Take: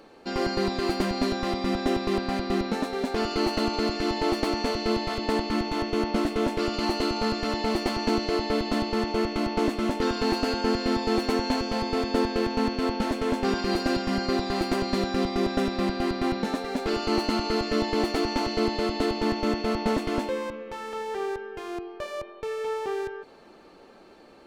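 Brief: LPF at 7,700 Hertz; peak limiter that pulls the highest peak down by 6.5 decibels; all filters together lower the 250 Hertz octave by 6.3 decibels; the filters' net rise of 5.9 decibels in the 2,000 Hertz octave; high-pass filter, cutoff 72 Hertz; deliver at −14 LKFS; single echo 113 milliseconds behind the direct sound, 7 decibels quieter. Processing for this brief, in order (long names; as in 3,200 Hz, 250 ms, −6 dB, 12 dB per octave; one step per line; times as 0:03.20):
high-pass filter 72 Hz
low-pass filter 7,700 Hz
parametric band 250 Hz −8.5 dB
parametric band 2,000 Hz +7.5 dB
brickwall limiter −18 dBFS
single-tap delay 113 ms −7 dB
level +14 dB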